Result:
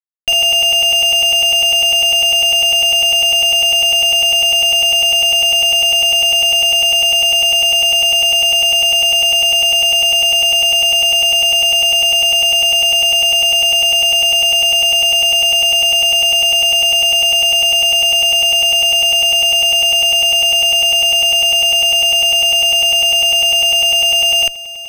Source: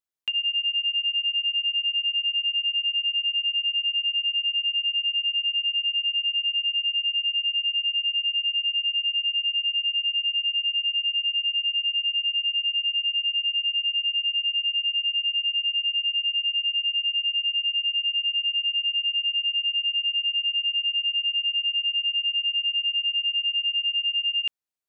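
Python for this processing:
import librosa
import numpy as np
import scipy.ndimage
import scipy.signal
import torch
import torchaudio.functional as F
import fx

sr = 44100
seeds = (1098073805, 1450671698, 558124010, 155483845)

y = fx.fuzz(x, sr, gain_db=58.0, gate_db=-55.0)
y = y + 10.0 ** (-16.0 / 20.0) * np.pad(y, (int(629 * sr / 1000.0), 0))[:len(y)]
y = np.interp(np.arange(len(y)), np.arange(len(y))[::3], y[::3])
y = y * librosa.db_to_amplitude(3.0)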